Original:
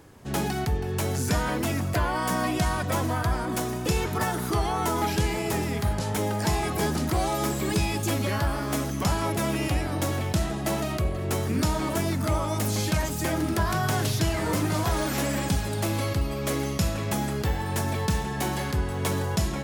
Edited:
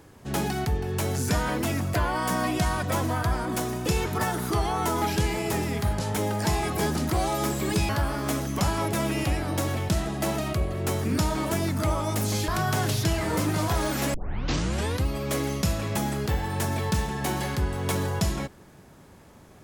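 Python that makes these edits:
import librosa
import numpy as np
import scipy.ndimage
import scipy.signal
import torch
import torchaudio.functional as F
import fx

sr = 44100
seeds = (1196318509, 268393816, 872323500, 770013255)

y = fx.edit(x, sr, fx.cut(start_s=7.89, length_s=0.44),
    fx.cut(start_s=12.92, length_s=0.72),
    fx.tape_start(start_s=15.3, length_s=0.92), tone=tone)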